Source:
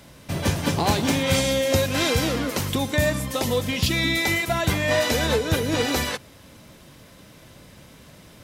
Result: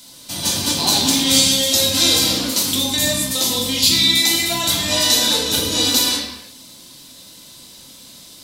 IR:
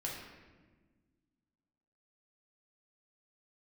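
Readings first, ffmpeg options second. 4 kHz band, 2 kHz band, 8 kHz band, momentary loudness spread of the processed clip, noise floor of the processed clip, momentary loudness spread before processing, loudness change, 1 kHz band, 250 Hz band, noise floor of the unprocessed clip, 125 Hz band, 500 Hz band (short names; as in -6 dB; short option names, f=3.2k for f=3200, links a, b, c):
+13.0 dB, 0.0 dB, +13.5 dB, 6 LU, -42 dBFS, 5 LU, +7.5 dB, +0.5 dB, +2.0 dB, -49 dBFS, -5.0 dB, -3.0 dB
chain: -filter_complex "[0:a]equalizer=f=125:t=o:w=1:g=-4,equalizer=f=250:t=o:w=1:g=9,equalizer=f=1k:t=o:w=1:g=8,equalizer=f=4k:t=o:w=1:g=11,equalizer=f=8k:t=o:w=1:g=5,acrossover=split=2400[a][b];[b]crystalizer=i=6.5:c=0[c];[a][c]amix=inputs=2:normalize=0[d];[1:a]atrim=start_sample=2205,afade=t=out:st=0.41:d=0.01,atrim=end_sample=18522[e];[d][e]afir=irnorm=-1:irlink=0,volume=-8.5dB"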